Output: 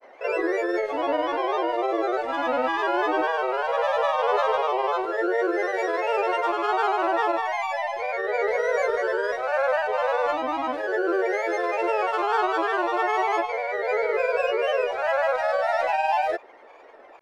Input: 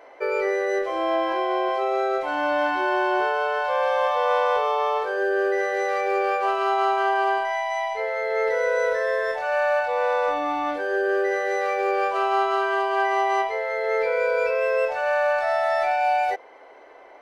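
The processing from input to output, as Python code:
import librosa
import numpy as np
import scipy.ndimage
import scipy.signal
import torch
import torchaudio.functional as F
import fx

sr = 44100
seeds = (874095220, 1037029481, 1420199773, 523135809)

y = fx.granulator(x, sr, seeds[0], grain_ms=100.0, per_s=20.0, spray_ms=33.0, spread_st=3)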